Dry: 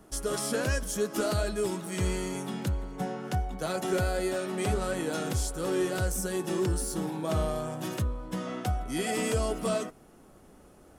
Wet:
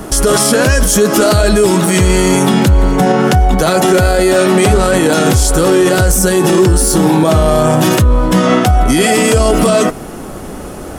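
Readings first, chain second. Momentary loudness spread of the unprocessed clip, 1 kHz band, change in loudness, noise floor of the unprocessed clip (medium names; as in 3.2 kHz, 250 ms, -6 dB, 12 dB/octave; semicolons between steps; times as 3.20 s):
5 LU, +21.5 dB, +20.5 dB, -55 dBFS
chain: loudness maximiser +30 dB; trim -1 dB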